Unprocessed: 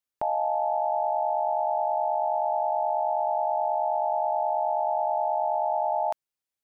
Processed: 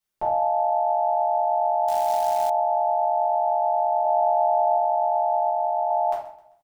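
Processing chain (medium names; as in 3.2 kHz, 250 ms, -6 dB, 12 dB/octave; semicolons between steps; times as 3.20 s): feedback delay 131 ms, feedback 39%, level -20 dB; peak limiter -22 dBFS, peak gain reduction 5 dB; 4.04–4.76 s: peaking EQ 310 Hz +13.5 dB 0.96 oct; simulated room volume 51 m³, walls mixed, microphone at 1.5 m; 1.88–2.50 s: short-mantissa float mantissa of 2-bit; 5.50–5.91 s: distance through air 450 m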